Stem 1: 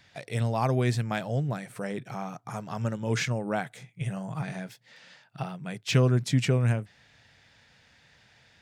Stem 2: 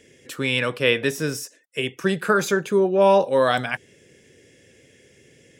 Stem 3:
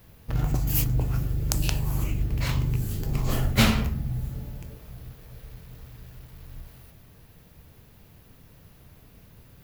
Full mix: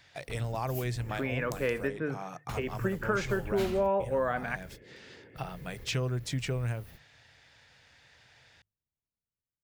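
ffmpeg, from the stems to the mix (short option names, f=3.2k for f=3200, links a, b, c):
-filter_complex "[0:a]equalizer=f=210:t=o:w=0.66:g=-8.5,volume=0dB,asplit=2[a][b];[1:a]lowpass=f=2.1k:w=0.5412,lowpass=f=2.1k:w=1.3066,adelay=800,volume=-0.5dB[c];[2:a]dynaudnorm=f=870:g=5:m=13dB,volume=-11dB,asplit=3[d][e][f];[d]atrim=end=1.88,asetpts=PTS-STARTPTS,afade=t=out:st=1.876:d=0.004:c=hsin[g];[e]atrim=start=1.88:end=2.49,asetpts=PTS-STARTPTS,volume=0[h];[f]atrim=start=2.49,asetpts=PTS-STARTPTS,afade=t=in:d=0.004:c=hsin[i];[g][h][i]concat=n=3:v=0:a=1[j];[b]apad=whole_len=424951[k];[j][k]sidechaingate=range=-44dB:threshold=-48dB:ratio=16:detection=peak[l];[a][c][l]amix=inputs=3:normalize=0,bandreject=f=50:t=h:w=6,bandreject=f=100:t=h:w=6,bandreject=f=150:t=h:w=6,acompressor=threshold=-34dB:ratio=2"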